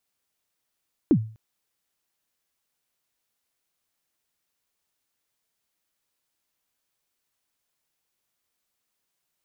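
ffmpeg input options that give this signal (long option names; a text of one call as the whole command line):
ffmpeg -f lavfi -i "aevalsrc='0.282*pow(10,-3*t/0.4)*sin(2*PI*(360*0.071/log(110/360)*(exp(log(110/360)*min(t,0.071)/0.071)-1)+110*max(t-0.071,0)))':duration=0.25:sample_rate=44100" out.wav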